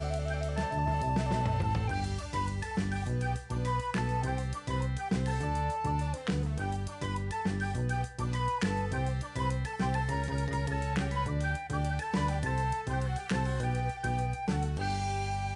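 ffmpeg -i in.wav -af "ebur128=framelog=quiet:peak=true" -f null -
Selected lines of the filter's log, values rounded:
Integrated loudness:
  I:         -32.4 LUFS
  Threshold: -42.4 LUFS
Loudness range:
  LRA:         1.0 LU
  Threshold: -52.5 LUFS
  LRA low:   -33.0 LUFS
  LRA high:  -32.0 LUFS
True peak:
  Peak:      -19.4 dBFS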